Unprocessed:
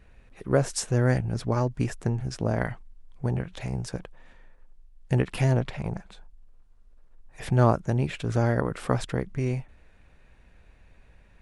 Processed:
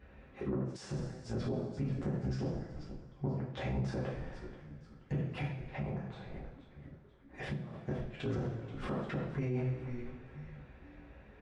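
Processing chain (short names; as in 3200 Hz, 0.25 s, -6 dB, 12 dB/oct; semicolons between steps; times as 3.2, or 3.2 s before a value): flipped gate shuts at -15 dBFS, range -31 dB; HPF 74 Hz; frequency-shifting echo 0.481 s, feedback 41%, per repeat -140 Hz, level -16 dB; two-slope reverb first 0.51 s, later 2.1 s, from -18 dB, DRR -6 dB; 5.47–7.74 compressor 3:1, threshold -35 dBFS, peak gain reduction 11 dB; low shelf 170 Hz -4.5 dB; limiter -26 dBFS, peak gain reduction 15 dB; tape spacing loss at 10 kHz 28 dB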